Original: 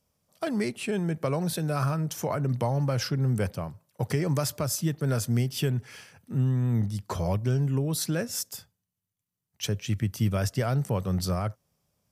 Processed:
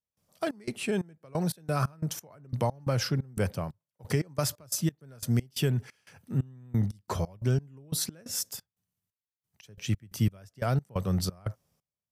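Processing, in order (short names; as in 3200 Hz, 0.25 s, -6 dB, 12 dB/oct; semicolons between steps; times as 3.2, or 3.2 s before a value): step gate ".xx.xx..x.x.x..x" 89 bpm -24 dB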